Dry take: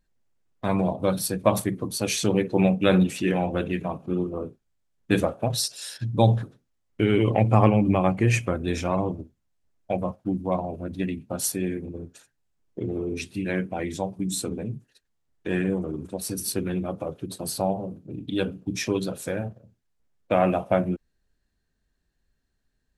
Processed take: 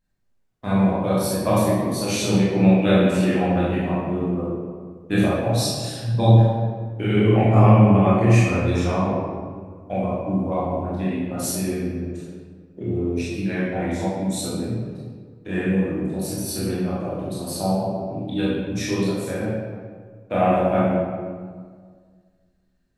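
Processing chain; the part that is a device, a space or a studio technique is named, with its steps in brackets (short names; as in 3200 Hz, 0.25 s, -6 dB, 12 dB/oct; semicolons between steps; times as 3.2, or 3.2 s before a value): stairwell (reverb RT60 1.7 s, pre-delay 17 ms, DRR -8.5 dB); gain -6 dB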